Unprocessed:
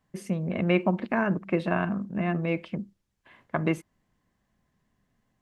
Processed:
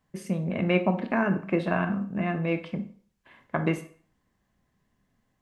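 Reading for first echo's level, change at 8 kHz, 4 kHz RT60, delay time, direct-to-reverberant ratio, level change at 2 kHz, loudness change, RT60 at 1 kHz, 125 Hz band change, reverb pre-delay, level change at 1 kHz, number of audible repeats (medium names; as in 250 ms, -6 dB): no echo, no reading, 0.40 s, no echo, 7.5 dB, +0.5 dB, +0.5 dB, 0.50 s, 0.0 dB, 17 ms, +0.5 dB, no echo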